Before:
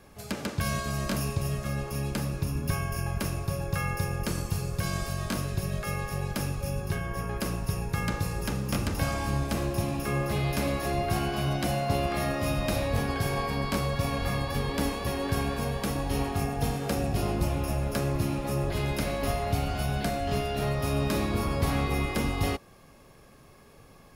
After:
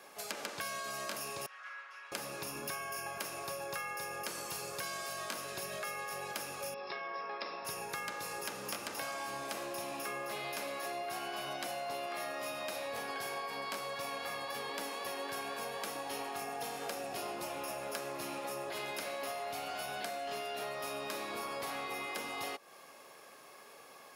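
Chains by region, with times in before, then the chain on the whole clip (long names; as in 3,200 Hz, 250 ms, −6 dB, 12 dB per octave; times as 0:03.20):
0:01.46–0:02.12: lower of the sound and its delayed copy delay 5.4 ms + four-pole ladder band-pass 1,700 Hz, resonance 50% + upward compression, threshold −50 dBFS
0:06.74–0:07.65: Chebyshev low-pass with heavy ripple 5,400 Hz, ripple 3 dB + parametric band 120 Hz −14 dB 0.79 octaves + notch comb filter 1,500 Hz
whole clip: high-pass filter 550 Hz 12 dB per octave; downward compressor, threshold −41 dBFS; level +3.5 dB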